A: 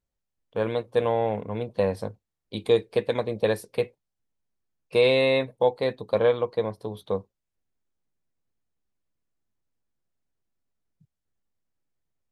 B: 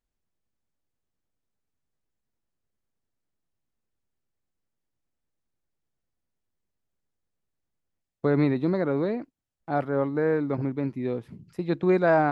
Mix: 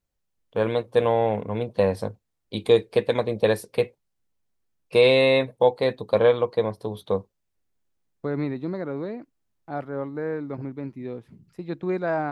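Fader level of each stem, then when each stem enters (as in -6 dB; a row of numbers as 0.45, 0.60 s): +3.0, -5.0 dB; 0.00, 0.00 s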